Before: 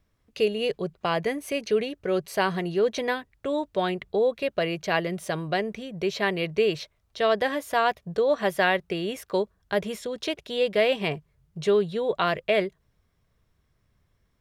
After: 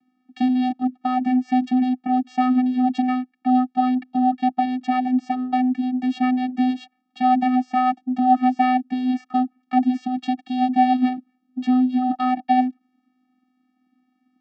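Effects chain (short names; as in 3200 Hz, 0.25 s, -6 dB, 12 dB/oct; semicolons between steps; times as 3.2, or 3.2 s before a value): dynamic EQ 2100 Hz, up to -7 dB, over -39 dBFS, Q 0.78; vocoder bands 8, square 253 Hz; BPF 180–4400 Hz; gain +8.5 dB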